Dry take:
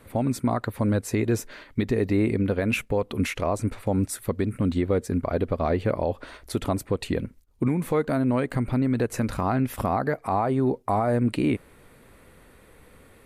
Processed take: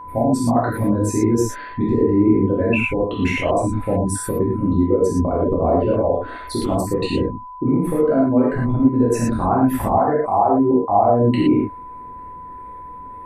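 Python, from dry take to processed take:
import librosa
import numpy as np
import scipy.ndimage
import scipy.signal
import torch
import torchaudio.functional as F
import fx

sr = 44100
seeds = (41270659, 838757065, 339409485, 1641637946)

y = fx.envelope_sharpen(x, sr, power=2.0)
y = fx.rev_gated(y, sr, seeds[0], gate_ms=140, shape='flat', drr_db=-7.0)
y = y + 10.0 ** (-33.0 / 20.0) * np.sin(2.0 * np.pi * 1000.0 * np.arange(len(y)) / sr)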